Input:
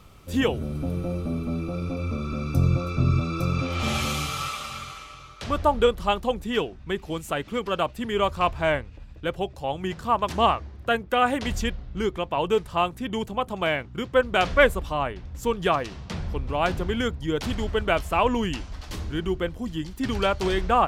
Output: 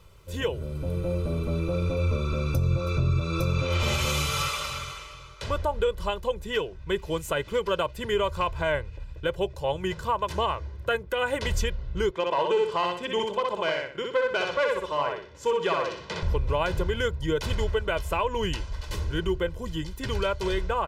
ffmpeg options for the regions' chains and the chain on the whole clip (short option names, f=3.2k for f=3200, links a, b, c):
-filter_complex "[0:a]asettb=1/sr,asplit=3[a][b][c];[a]atrim=end=12.114[d];[b]atrim=start=12.11:end=16.23,asetpts=PTS-STARTPTS,afade=t=in:d=0.004:c=qsin,afade=t=out:st=4.116:d=0.004:c=qsin,aeval=exprs='clip(val(0),-1,0.112)':c=same,highpass=240,lowpass=6.1k,aecho=1:1:62|124|186|248:0.708|0.212|0.0637|0.0191,atrim=end_sample=181692[e];[c]atrim=start=16.226[f];[d][e]acrossfade=d=0.004:c1=hsin:c2=qsin[g];[g][f]acrossfade=d=0.004:c1=qsin:c2=hsin,aecho=1:1:2:0.7,dynaudnorm=f=160:g=13:m=11.5dB,alimiter=limit=-10.5dB:level=0:latency=1:release=184,volume=-5.5dB"